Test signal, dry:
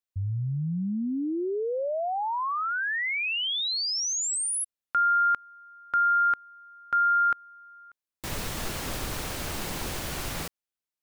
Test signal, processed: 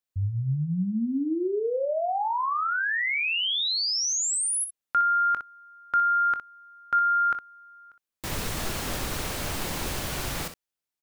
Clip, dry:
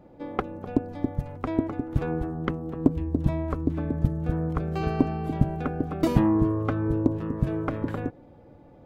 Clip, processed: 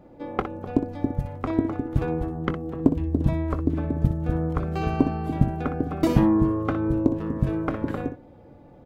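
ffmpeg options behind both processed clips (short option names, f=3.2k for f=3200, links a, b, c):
-af "aecho=1:1:22|61:0.2|0.316,volume=1.5dB"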